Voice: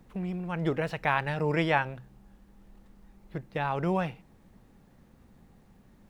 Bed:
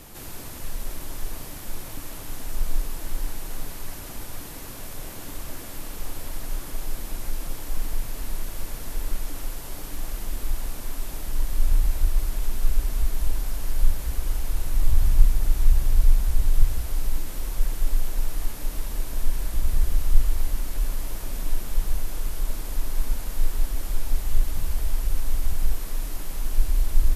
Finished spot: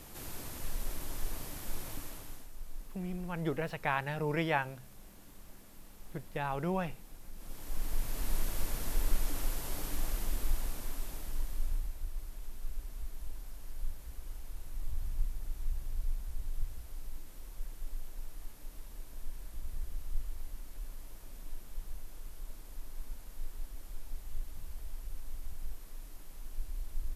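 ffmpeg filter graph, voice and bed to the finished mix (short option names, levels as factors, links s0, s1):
-filter_complex "[0:a]adelay=2800,volume=0.531[s0];[1:a]volume=3.76,afade=t=out:st=1.91:d=0.59:silence=0.199526,afade=t=in:st=7.35:d=1.03:silence=0.141254,afade=t=out:st=9.85:d=2.09:silence=0.16788[s1];[s0][s1]amix=inputs=2:normalize=0"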